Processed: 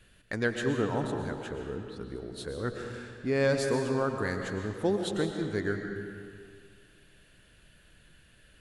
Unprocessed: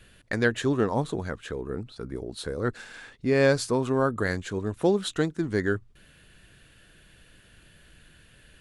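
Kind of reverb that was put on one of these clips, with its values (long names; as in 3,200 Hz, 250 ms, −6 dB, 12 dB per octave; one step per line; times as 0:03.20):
comb and all-pass reverb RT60 2.1 s, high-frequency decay 0.8×, pre-delay 80 ms, DRR 4 dB
level −5.5 dB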